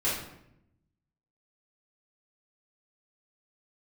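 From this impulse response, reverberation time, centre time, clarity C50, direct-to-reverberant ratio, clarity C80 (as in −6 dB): 0.80 s, 50 ms, 2.0 dB, −9.5 dB, 6.5 dB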